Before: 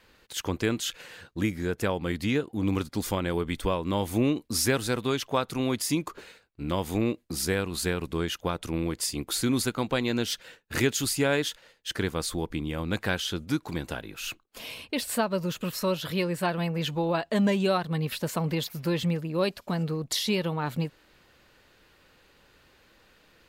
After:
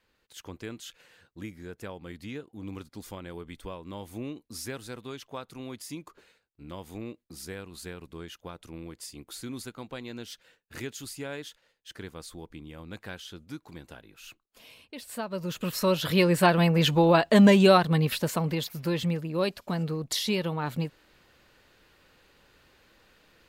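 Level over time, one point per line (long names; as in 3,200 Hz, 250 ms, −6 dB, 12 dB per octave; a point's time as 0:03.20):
0:14.99 −12.5 dB
0:15.62 0 dB
0:16.32 +7 dB
0:17.78 +7 dB
0:18.56 −1 dB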